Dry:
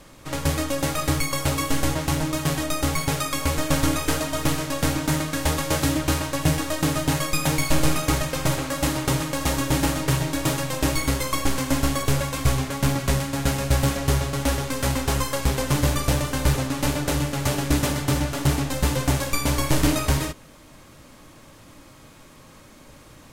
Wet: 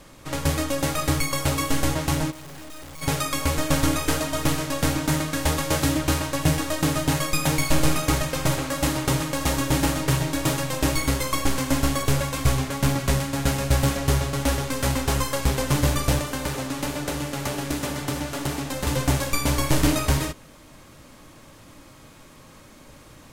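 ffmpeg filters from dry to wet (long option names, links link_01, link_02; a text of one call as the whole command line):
ffmpeg -i in.wav -filter_complex "[0:a]asplit=3[link_01][link_02][link_03];[link_01]afade=type=out:start_time=2.3:duration=0.02[link_04];[link_02]aeval=exprs='(tanh(100*val(0)+0.6)-tanh(0.6))/100':channel_layout=same,afade=type=in:start_time=2.3:duration=0.02,afade=type=out:start_time=3.01:duration=0.02[link_05];[link_03]afade=type=in:start_time=3.01:duration=0.02[link_06];[link_04][link_05][link_06]amix=inputs=3:normalize=0,asettb=1/sr,asplit=3[link_07][link_08][link_09];[link_07]atrim=end=16.194[link_10];[link_08]atrim=start=16.19:end=18.87,asetpts=PTS-STARTPTS,afade=type=in:duration=0.004:curve=qsin,afade=type=out:start_time=2.676:duration=0.004:curve=qsin,acrossover=split=180|2700|6300[link_11][link_12][link_13][link_14];[link_11]acompressor=threshold=-37dB:ratio=3[link_15];[link_12]acompressor=threshold=-27dB:ratio=3[link_16];[link_13]acompressor=threshold=-39dB:ratio=3[link_17];[link_14]acompressor=threshold=-37dB:ratio=3[link_18];[link_15][link_16][link_17][link_18]amix=inputs=4:normalize=0[link_19];[link_09]atrim=start=18.866[link_20];[link_10][link_19]acrossfade=duration=0.004:curve1=hsin:curve2=qsin[link_21];[link_21][link_20]acrossfade=duration=0.004:curve1=qsin:curve2=hsin" out.wav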